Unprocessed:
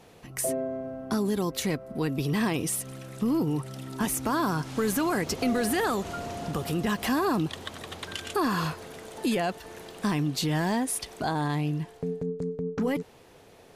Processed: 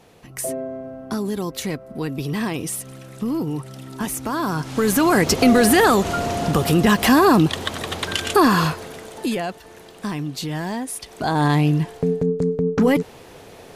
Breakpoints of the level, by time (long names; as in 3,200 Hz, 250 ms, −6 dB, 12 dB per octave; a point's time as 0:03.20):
0:04.32 +2 dB
0:05.25 +12 dB
0:08.40 +12 dB
0:09.62 0 dB
0:11.02 0 dB
0:11.45 +11 dB